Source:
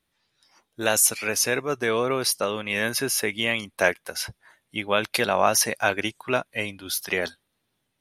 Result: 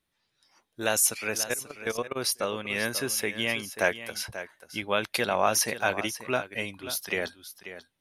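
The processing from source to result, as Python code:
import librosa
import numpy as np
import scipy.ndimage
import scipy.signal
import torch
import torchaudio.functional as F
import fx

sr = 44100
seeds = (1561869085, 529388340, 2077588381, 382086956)

p1 = fx.level_steps(x, sr, step_db=23, at=(1.37, 2.15), fade=0.02)
p2 = p1 + fx.echo_single(p1, sr, ms=537, db=-12.5, dry=0)
y = p2 * librosa.db_to_amplitude(-4.0)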